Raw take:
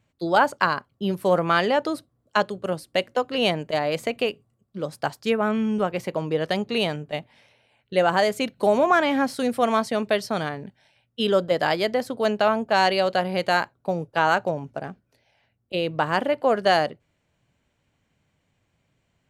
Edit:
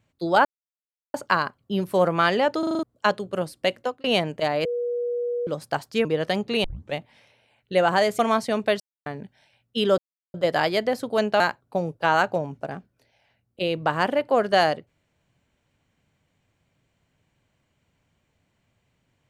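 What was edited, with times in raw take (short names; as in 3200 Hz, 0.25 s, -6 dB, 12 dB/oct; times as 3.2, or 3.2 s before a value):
0.45 insert silence 0.69 s
1.9 stutter in place 0.04 s, 6 plays
3.09–3.35 fade out
3.96–4.78 bleep 482 Hz -23.5 dBFS
5.36–6.26 cut
6.85 tape start 0.30 s
8.4–9.62 cut
10.23–10.49 mute
11.41 insert silence 0.36 s
12.47–13.53 cut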